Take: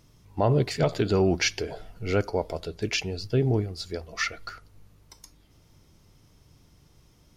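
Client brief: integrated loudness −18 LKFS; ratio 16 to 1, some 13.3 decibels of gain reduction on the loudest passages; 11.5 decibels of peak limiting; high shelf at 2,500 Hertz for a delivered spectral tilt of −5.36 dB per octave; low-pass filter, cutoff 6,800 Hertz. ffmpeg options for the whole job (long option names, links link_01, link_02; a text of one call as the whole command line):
ffmpeg -i in.wav -af "lowpass=6800,highshelf=frequency=2500:gain=-4,acompressor=threshold=-31dB:ratio=16,volume=24.5dB,alimiter=limit=-7.5dB:level=0:latency=1" out.wav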